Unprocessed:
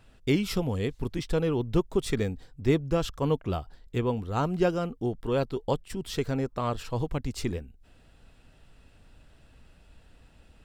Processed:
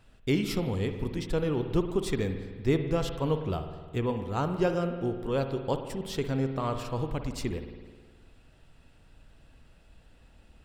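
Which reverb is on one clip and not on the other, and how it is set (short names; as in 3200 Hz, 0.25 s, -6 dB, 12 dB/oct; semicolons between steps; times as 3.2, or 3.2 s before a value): spring tank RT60 1.6 s, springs 52 ms, chirp 30 ms, DRR 7 dB; gain -2 dB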